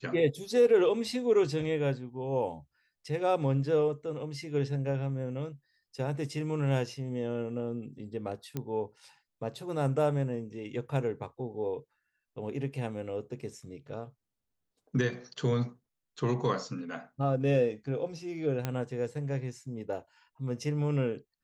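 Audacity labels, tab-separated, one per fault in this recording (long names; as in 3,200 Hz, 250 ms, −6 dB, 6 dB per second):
8.570000	8.570000	click −20 dBFS
18.650000	18.650000	click −17 dBFS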